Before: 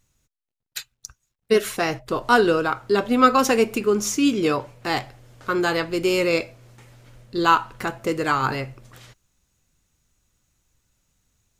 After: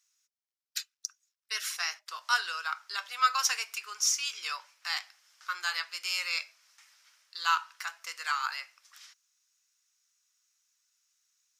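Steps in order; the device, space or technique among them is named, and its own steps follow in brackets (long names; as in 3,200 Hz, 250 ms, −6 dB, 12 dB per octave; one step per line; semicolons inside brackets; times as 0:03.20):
headphones lying on a table (high-pass filter 1,200 Hz 24 dB per octave; parametric band 5,400 Hz +10.5 dB 0.54 octaves)
level −6.5 dB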